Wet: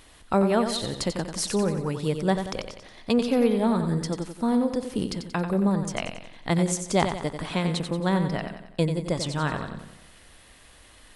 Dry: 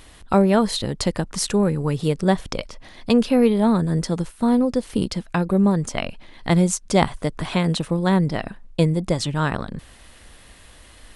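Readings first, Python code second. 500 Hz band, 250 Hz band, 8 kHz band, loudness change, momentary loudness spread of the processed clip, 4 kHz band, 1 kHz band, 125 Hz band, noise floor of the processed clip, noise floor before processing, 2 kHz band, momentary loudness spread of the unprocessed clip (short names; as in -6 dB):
-4.0 dB, -5.5 dB, -3.5 dB, -5.0 dB, 11 LU, -3.5 dB, -4.0 dB, -6.0 dB, -52 dBFS, -47 dBFS, -3.5 dB, 13 LU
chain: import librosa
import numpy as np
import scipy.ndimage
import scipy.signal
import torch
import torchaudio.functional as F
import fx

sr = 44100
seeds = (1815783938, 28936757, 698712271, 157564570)

p1 = fx.low_shelf(x, sr, hz=160.0, db=-4.5)
p2 = p1 + fx.echo_feedback(p1, sr, ms=91, feedback_pct=48, wet_db=-8.0, dry=0)
y = F.gain(torch.from_numpy(p2), -4.5).numpy()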